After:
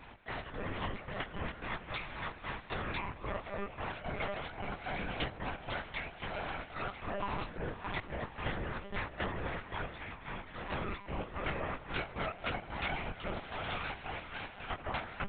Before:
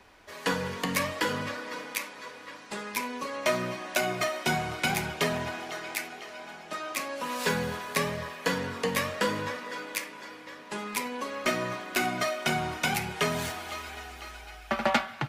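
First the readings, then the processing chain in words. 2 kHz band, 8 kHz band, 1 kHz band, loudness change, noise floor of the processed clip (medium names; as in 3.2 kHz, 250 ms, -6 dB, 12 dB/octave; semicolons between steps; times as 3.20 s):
-8.5 dB, under -40 dB, -7.5 dB, -9.0 dB, -51 dBFS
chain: octave divider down 2 oct, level 0 dB; high-pass 55 Hz 12 dB/octave; hum notches 60/120/180/240 Hz; spectral gate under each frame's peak -25 dB strong; compression 6:1, threshold -39 dBFS, peak gain reduction 18 dB; trance gate "x.x.xxx.x.x.x.xx" 111 bpm -12 dB; ring modulator 64 Hz; chorus 2.9 Hz, delay 17 ms, depth 6.2 ms; on a send: echo that smears into a reverb 568 ms, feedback 43%, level -15 dB; on the sum: monotone LPC vocoder at 8 kHz 200 Hz; trim +11 dB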